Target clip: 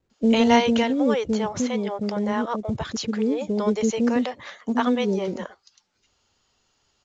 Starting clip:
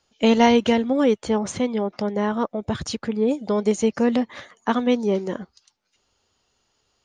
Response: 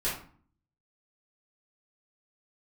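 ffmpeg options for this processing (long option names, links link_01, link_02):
-filter_complex "[0:a]acrossover=split=470[link_01][link_02];[link_02]adelay=100[link_03];[link_01][link_03]amix=inputs=2:normalize=0" -ar 16000 -c:a pcm_mulaw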